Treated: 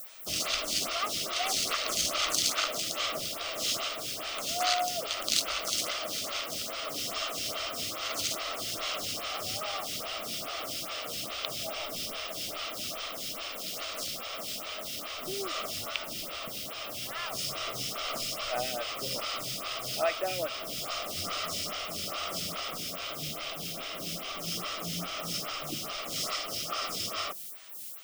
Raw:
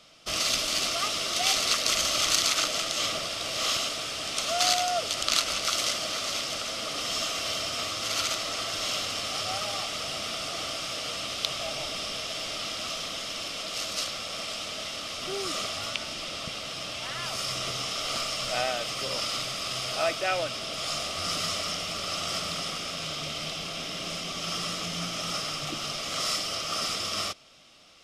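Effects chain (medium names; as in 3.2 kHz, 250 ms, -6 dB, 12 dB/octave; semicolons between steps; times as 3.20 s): added noise blue -42 dBFS; lamp-driven phase shifter 2.4 Hz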